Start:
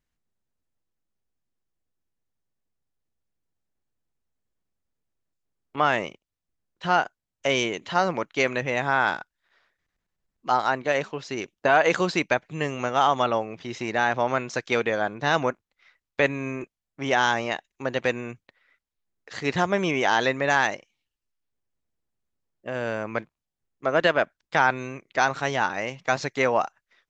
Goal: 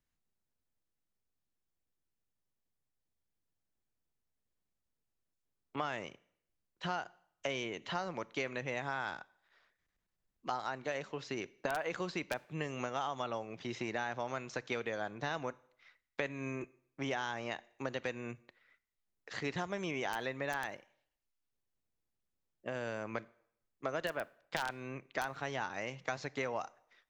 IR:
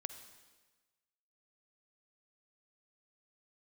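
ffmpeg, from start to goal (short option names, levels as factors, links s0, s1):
-filter_complex "[0:a]aeval=exprs='(mod(2.24*val(0)+1,2)-1)/2.24':c=same,acrossover=split=86|4100[s0][s1][s2];[s0]acompressor=threshold=0.00158:ratio=4[s3];[s1]acompressor=threshold=0.0282:ratio=4[s4];[s2]acompressor=threshold=0.00316:ratio=4[s5];[s3][s4][s5]amix=inputs=3:normalize=0,asplit=2[s6][s7];[1:a]atrim=start_sample=2205,asetrate=83790,aresample=44100[s8];[s7][s8]afir=irnorm=-1:irlink=0,volume=0.841[s9];[s6][s9]amix=inputs=2:normalize=0,volume=0.447"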